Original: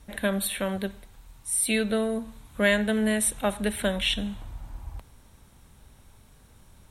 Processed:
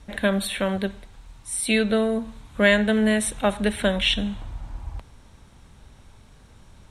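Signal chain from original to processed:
low-pass filter 7,000 Hz 12 dB per octave
level +4.5 dB

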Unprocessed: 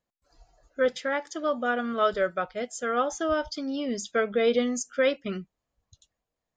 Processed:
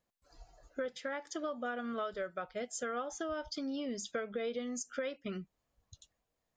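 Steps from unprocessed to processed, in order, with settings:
downward compressor 6 to 1, threshold −37 dBFS, peak gain reduction 17.5 dB
level +1 dB

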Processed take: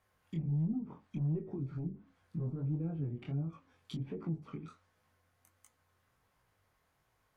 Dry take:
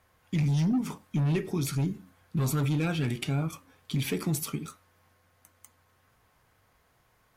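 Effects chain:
treble cut that deepens with the level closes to 460 Hz, closed at −25 dBFS
chorus effect 1.4 Hz, delay 18 ms, depth 6.8 ms
level −6 dB

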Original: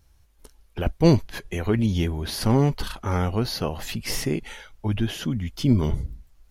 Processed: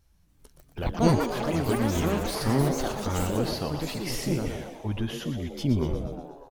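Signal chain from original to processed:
delay with pitch and tempo change per echo 279 ms, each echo +6 semitones, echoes 3
echo with shifted repeats 120 ms, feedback 56%, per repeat +120 Hz, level −9 dB
level −5.5 dB

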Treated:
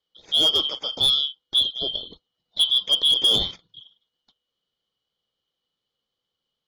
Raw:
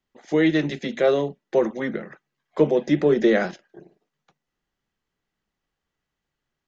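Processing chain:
band-splitting scrambler in four parts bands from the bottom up 2413
low-pass filter 5,700 Hz 12 dB per octave
hard clipping −13.5 dBFS, distortion −16 dB

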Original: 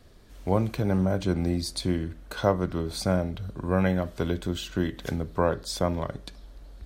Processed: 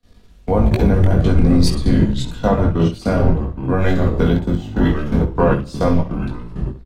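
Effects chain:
sub-octave generator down 1 octave, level −1 dB
rectangular room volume 3,700 cubic metres, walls furnished, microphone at 1.8 metres
in parallel at −1 dB: downward compressor 10 to 1, threshold −29 dBFS, peak gain reduction 14 dB
on the sum: high-shelf EQ 7,000 Hz −7 dB
output level in coarse steps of 23 dB
ambience of single reflections 19 ms −4 dB, 65 ms −11 dB
delay with pitch and tempo change per echo 106 ms, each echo −4 semitones, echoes 2, each echo −6 dB
multiband upward and downward expander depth 40%
level +7.5 dB

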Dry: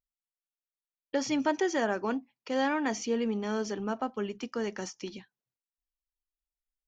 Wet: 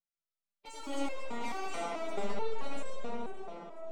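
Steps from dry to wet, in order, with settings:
mid-hump overdrive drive 16 dB, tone 1,900 Hz, clips at −16 dBFS
in parallel at −5.5 dB: slack as between gear wheels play −31 dBFS
on the sum: phase-vocoder stretch with locked phases 0.57×
soft clipping −29.5 dBFS, distortion −7 dB
formants moved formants +5 semitones
notch filter 1,700 Hz, Q 5.1
delay that swaps between a low-pass and a high-pass 246 ms, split 1,000 Hz, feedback 59%, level −8 dB
pitch vibrato 1.6 Hz 37 cents
convolution reverb RT60 5.5 s, pre-delay 45 ms, DRR −4 dB
step-sequenced resonator 4.6 Hz 170–530 Hz
level +3.5 dB

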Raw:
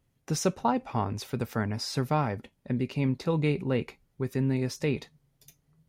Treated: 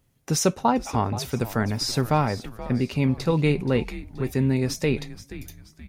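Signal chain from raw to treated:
high-shelf EQ 5,300 Hz +5 dB
on a send: echo with shifted repeats 477 ms, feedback 40%, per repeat −110 Hz, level −14.5 dB
on the sum: level +5 dB

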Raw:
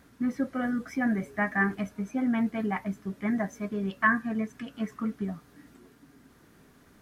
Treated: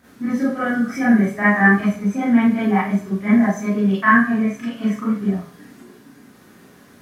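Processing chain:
high-pass filter 82 Hz
four-comb reverb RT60 0.4 s, combs from 30 ms, DRR −9.5 dB
level +1 dB

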